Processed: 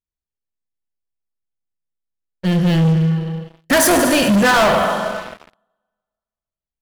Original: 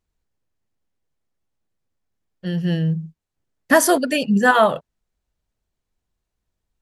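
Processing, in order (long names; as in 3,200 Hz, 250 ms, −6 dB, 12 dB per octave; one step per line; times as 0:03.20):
four-comb reverb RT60 1.7 s, combs from 33 ms, DRR 6 dB
leveller curve on the samples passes 5
level −7.5 dB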